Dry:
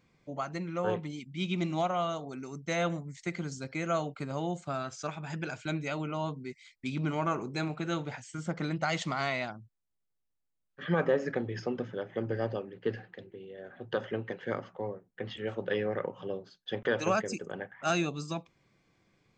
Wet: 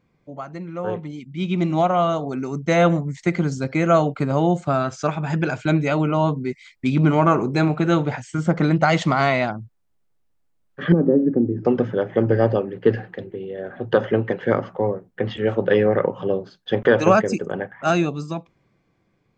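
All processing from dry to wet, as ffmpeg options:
-filter_complex "[0:a]asettb=1/sr,asplit=3[s0][s1][s2];[s0]atrim=end=10.924[s3];[s1]atrim=start=10.92:end=11.65,asetpts=PTS-STARTPTS,afade=t=in:d=0.004:c=qsin,afade=t=out:st=0.726:d=0.004:c=qsin,bandpass=f=290:t=q:w=3.3,aemphasis=mode=reproduction:type=riaa[s4];[s2]atrim=start=11.646[s5];[s3][s4]acrossfade=d=0.004:c1=hsin:c2=qsin[s6];[s6][s5]acrossfade=d=0.004:c1=qsin:c2=hsin,highshelf=f=2100:g=-10.5,dynaudnorm=f=160:g=21:m=3.98,volume=1.5"

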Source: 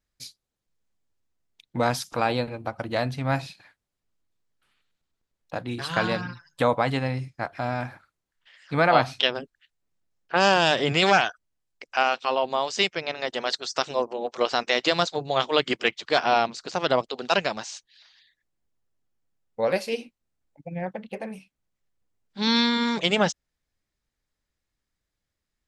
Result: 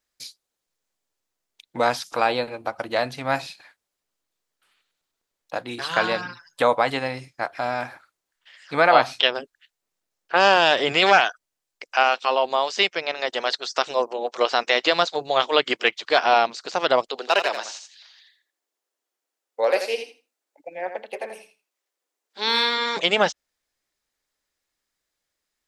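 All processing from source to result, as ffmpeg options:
-filter_complex "[0:a]asettb=1/sr,asplit=3[s0][s1][s2];[s0]atrim=end=17.194[s3];[s1]atrim=start=17.19:end=22.97,asetpts=PTS-STARTPTS,afade=t=in:d=0.004:c=qsin,afade=t=out:st=5.776:d=0.004:c=qsin,highpass=f=300:w=0.5412,highpass=f=300:w=1.3066,asoftclip=type=hard:threshold=0.178,aecho=1:1:83|166|249:0.355|0.0603|0.0103,atrim=end_sample=254898[s4];[s2]atrim=start=22.966[s5];[s3][s4]acrossfade=d=0.004:c1=hsin:c2=qsin[s6];[s6][s5]acrossfade=d=0.004:c1=qsin:c2=hsin,acrossover=split=4400[s7][s8];[s8]acompressor=threshold=0.00562:ratio=4:attack=1:release=60[s9];[s7][s9]amix=inputs=2:normalize=0,bass=f=250:g=-15,treble=f=4000:g=3,volume=1.58"

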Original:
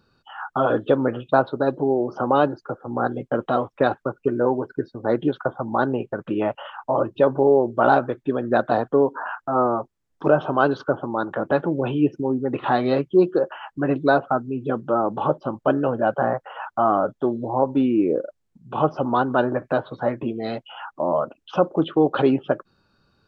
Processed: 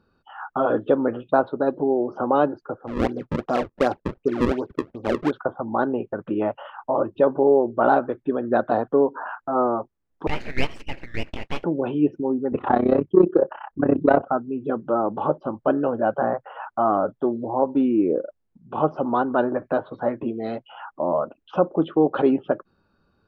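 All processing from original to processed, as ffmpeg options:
-filter_complex "[0:a]asettb=1/sr,asplit=3[s0][s1][s2];[s0]atrim=end=2.874[s3];[s1]atrim=start=2.87:end=5.31,asetpts=PTS-STARTPTS,afade=t=in:d=0.004:c=qsin,afade=t=out:st=2.436:d=0.004:c=qsin,acrusher=samples=34:mix=1:aa=0.000001:lfo=1:lforange=54.4:lforate=2.7,adynamicsmooth=sensitivity=1:basefreq=3000[s4];[s2]atrim=start=5.306[s5];[s3][s4]acrossfade=d=0.004:c1=hsin:c2=qsin[s6];[s6][s5]acrossfade=d=0.004:c1=qsin:c2=hsin,asettb=1/sr,asplit=3[s7][s8][s9];[s7]atrim=end=10.274[s10];[s8]atrim=start=10.27:end=11.64,asetpts=PTS-STARTPTS,afade=t=in:d=0.004:c=qsin,afade=t=out:st=1.366:d=0.004:c=qsin,highpass=f=970:w=0.5412,highpass=f=970:w=1.3066,acontrast=74,aeval=exprs='abs(val(0))':c=same[s11];[s9]atrim=start=11.636[s12];[s10][s11]acrossfade=d=0.004:c1=hsin:c2=qsin[s13];[s13][s12]acrossfade=d=0.004:c1=qsin:c2=hsin,asettb=1/sr,asplit=3[s14][s15][s16];[s14]atrim=end=12.524[s17];[s15]atrim=start=12.52:end=14.28,asetpts=PTS-STARTPTS,afade=t=in:d=0.004:c=qsin,afade=t=out:st=1.756:d=0.004:c=qsin,lowpass=f=1300:p=1,acontrast=88,tremolo=f=32:d=0.857[s18];[s16]atrim=start=14.276[s19];[s17][s18]acrossfade=d=0.004:c1=hsin:c2=qsin[s20];[s20][s19]acrossfade=d=0.004:c1=qsin:c2=hsin,lowpass=f=1400:p=1,equalizer=f=130:w=6.6:g=-12.5"

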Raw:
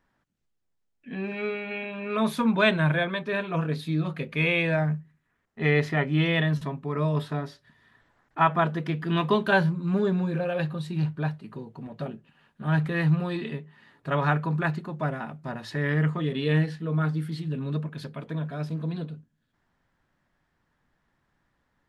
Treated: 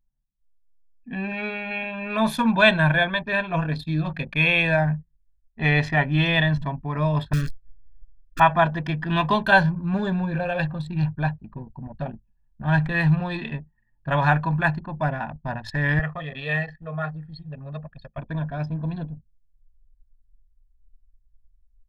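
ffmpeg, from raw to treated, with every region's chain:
-filter_complex "[0:a]asettb=1/sr,asplit=3[s0][s1][s2];[s0]atrim=end=7.334[s3];[s1]atrim=start=7.33:end=8.4,asetpts=PTS-STARTPTS,afade=t=in:d=0.004:c=qsin,afade=t=out:st=1.066:d=0.004:c=qsin,bass=f=250:g=6,treble=f=4000:g=1,acrusher=bits=7:dc=4:mix=0:aa=0.000001,asuperstop=centerf=790:order=12:qfactor=1.3[s4];[s2]atrim=start=8.396[s5];[s3][s4]acrossfade=d=0.004:c1=hsin:c2=qsin[s6];[s6][s5]acrossfade=d=0.004:c1=qsin:c2=hsin,asettb=1/sr,asplit=3[s7][s8][s9];[s7]atrim=end=15.994[s10];[s8]atrim=start=15.99:end=18.18,asetpts=PTS-STARTPTS,afade=t=in:d=0.004:c=qsin,afade=t=out:st=2.186:d=0.004:c=qsin,highpass=f=530:p=1,highshelf=f=3200:g=-8,aecho=1:1:1.6:0.72,atrim=end_sample=96579[s11];[s9]atrim=start=18.176[s12];[s10][s11]acrossfade=d=0.004:c1=hsin:c2=qsin[s13];[s13][s12]acrossfade=d=0.004:c1=qsin:c2=hsin,anlmdn=0.631,asubboost=boost=9.5:cutoff=55,aecho=1:1:1.2:0.64,volume=1.58"

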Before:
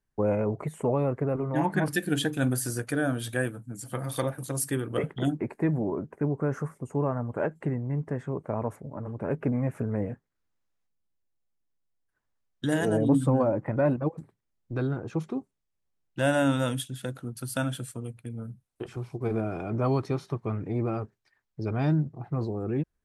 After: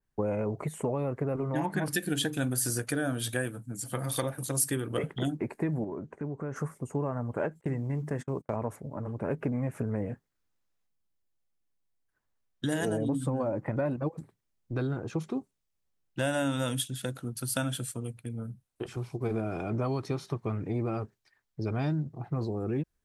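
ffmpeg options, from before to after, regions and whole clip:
-filter_complex "[0:a]asettb=1/sr,asplit=3[s0][s1][s2];[s0]atrim=end=5.844[s3];[s1]atrim=start=5.84:end=6.56,asetpts=PTS-STARTPTS,afade=t=in:d=0.004:c=qsin,afade=t=out:st=0.716:d=0.004:c=qsin,lowpass=f=7900:w=0.5412,lowpass=f=7900:w=1.3066,acompressor=threshold=0.0141:ratio=2:attack=3.2:release=140:knee=1:detection=peak,bandreject=f=5100:w=11[s4];[s2]atrim=start=6.556[s5];[s3][s4]acrossfade=d=0.004:c1=hsin:c2=qsin[s6];[s6][s5]acrossfade=d=0.004:c1=qsin:c2=hsin,asettb=1/sr,asplit=3[s7][s8][s9];[s7]atrim=end=7.614[s10];[s8]atrim=start=7.61:end=8.56,asetpts=PTS-STARTPTS,afade=t=in:d=0.004:c=qsin,afade=t=out:st=0.946:d=0.004:c=qsin,bandreject=f=50:t=h:w=6,bandreject=f=100:t=h:w=6,bandreject=f=150:t=h:w=6,bandreject=f=200:t=h:w=6,bandreject=f=250:t=h:w=6,bandreject=f=300:t=h:w=6,agate=range=0.0178:threshold=0.01:ratio=16:release=100:detection=peak,highshelf=f=3500:g=9.5[s11];[s9]atrim=start=8.556[s12];[s10][s11]acrossfade=d=0.004:c1=hsin:c2=qsin[s13];[s13][s12]acrossfade=d=0.004:c1=qsin:c2=hsin,acompressor=threshold=0.0501:ratio=6,adynamicequalizer=threshold=0.00251:dfrequency=2700:dqfactor=0.7:tfrequency=2700:tqfactor=0.7:attack=5:release=100:ratio=0.375:range=2.5:mode=boostabove:tftype=highshelf"

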